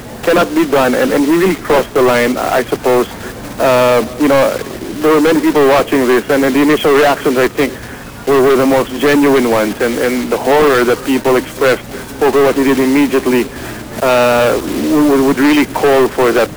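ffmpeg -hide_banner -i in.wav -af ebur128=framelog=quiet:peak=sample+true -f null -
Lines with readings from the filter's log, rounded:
Integrated loudness:
  I:         -11.7 LUFS
  Threshold: -22.0 LUFS
Loudness range:
  LRA:         1.6 LU
  Threshold: -32.1 LUFS
  LRA low:   -12.8 LUFS
  LRA high:  -11.2 LUFS
Sample peak:
  Peak:       -5.4 dBFS
True peak:
  Peak:       -4.7 dBFS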